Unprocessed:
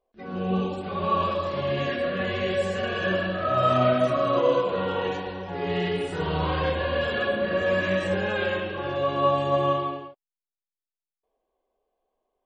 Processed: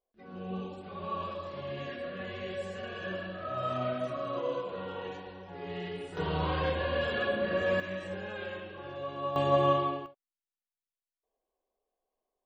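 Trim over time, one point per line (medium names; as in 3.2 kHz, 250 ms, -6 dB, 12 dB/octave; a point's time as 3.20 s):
-12 dB
from 6.17 s -5 dB
from 7.80 s -13 dB
from 9.36 s -2 dB
from 10.06 s -8.5 dB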